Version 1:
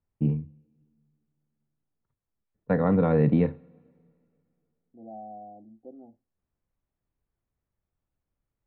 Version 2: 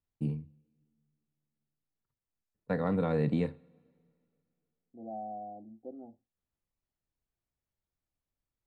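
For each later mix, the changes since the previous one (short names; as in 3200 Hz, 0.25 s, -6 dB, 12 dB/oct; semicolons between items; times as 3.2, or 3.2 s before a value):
first voice -8.5 dB; master: remove air absorption 470 m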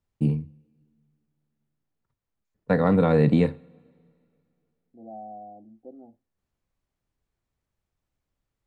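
first voice +10.0 dB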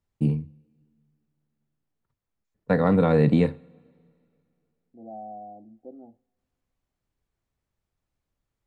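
second voice: send on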